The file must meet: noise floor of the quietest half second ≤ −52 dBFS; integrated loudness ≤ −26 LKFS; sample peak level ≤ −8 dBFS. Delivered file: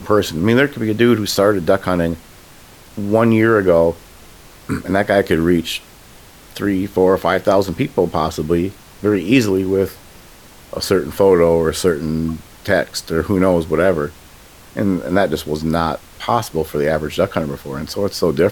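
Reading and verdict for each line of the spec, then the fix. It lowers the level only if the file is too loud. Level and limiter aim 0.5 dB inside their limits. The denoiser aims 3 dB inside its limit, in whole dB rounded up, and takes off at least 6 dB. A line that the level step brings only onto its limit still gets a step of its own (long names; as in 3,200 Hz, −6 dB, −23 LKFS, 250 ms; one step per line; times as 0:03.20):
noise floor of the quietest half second −42 dBFS: out of spec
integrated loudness −17.0 LKFS: out of spec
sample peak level −1.5 dBFS: out of spec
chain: broadband denoise 6 dB, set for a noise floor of −42 dBFS
level −9.5 dB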